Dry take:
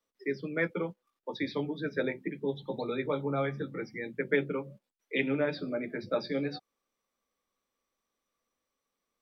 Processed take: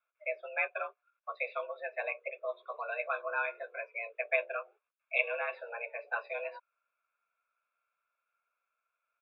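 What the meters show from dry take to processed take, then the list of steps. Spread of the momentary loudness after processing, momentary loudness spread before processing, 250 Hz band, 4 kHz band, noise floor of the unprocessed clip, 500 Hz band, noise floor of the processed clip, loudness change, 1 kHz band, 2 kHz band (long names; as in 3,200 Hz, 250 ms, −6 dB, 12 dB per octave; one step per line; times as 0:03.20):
10 LU, 8 LU, below −35 dB, −11.0 dB, below −85 dBFS, −5.5 dB, below −85 dBFS, −2.5 dB, +2.5 dB, +2.5 dB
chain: comb filter 0.9 ms, depth 90%
single-sideband voice off tune +220 Hz 380–2,600 Hz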